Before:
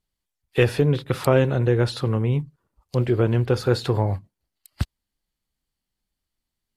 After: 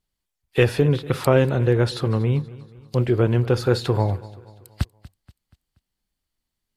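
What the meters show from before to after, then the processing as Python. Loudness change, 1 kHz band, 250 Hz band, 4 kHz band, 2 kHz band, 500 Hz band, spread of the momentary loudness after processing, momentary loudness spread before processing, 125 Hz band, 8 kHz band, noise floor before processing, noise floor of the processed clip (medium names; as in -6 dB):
+1.0 dB, +1.0 dB, +1.0 dB, +1.0 dB, +1.0 dB, +1.0 dB, 13 LU, 13 LU, +1.0 dB, +1.0 dB, -84 dBFS, -82 dBFS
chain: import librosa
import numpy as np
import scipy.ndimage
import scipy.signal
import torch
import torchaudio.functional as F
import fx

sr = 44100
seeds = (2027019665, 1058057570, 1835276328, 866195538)

y = fx.echo_feedback(x, sr, ms=239, feedback_pct=46, wet_db=-19.5)
y = F.gain(torch.from_numpy(y), 1.0).numpy()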